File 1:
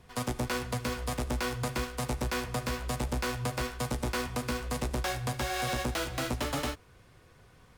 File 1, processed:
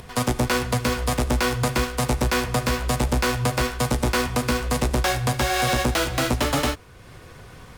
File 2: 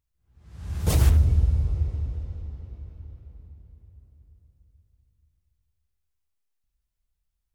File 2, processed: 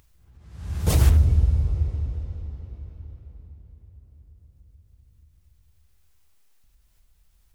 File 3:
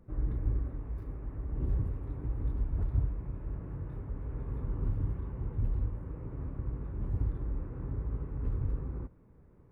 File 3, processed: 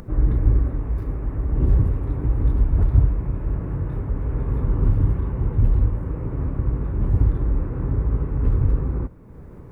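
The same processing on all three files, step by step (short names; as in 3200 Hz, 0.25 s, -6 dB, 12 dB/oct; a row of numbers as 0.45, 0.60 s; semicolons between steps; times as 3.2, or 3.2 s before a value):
upward compressor, threshold -46 dBFS; match loudness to -23 LUFS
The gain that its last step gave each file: +10.0, +1.5, +13.5 dB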